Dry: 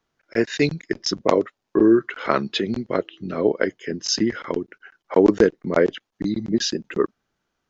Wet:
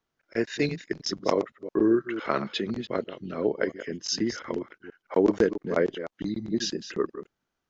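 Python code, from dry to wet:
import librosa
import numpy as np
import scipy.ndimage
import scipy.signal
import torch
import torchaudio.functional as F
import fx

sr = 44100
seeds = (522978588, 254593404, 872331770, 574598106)

y = fx.reverse_delay(x, sr, ms=169, wet_db=-11.5)
y = F.gain(torch.from_numpy(y), -6.5).numpy()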